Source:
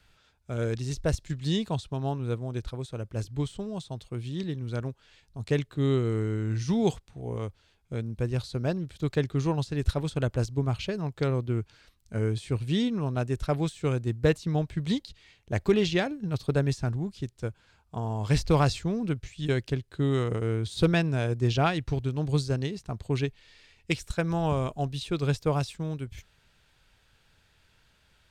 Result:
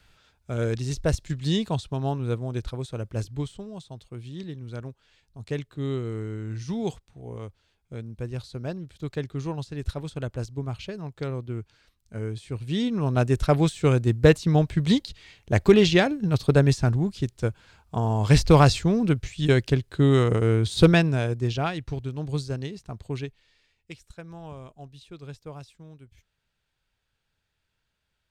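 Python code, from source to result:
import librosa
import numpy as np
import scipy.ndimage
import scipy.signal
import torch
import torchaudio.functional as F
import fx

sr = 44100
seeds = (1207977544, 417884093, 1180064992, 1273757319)

y = fx.gain(x, sr, db=fx.line((3.17, 3.0), (3.66, -4.0), (12.53, -4.0), (13.2, 7.0), (20.86, 7.0), (21.6, -2.5), (23.06, -2.5), (23.92, -14.0)))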